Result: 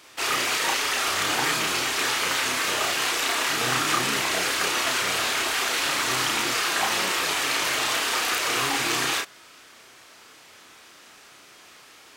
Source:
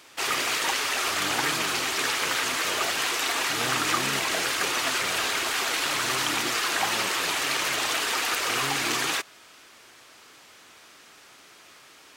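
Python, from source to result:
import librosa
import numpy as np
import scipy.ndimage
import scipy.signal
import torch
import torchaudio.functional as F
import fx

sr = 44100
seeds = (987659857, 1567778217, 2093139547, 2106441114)

y = fx.doubler(x, sr, ms=32.0, db=-3)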